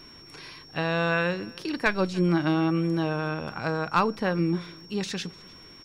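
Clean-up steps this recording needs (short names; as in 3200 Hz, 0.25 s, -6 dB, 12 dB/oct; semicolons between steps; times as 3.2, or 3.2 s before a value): de-click; notch 5500 Hz, Q 30; inverse comb 0.3 s -24 dB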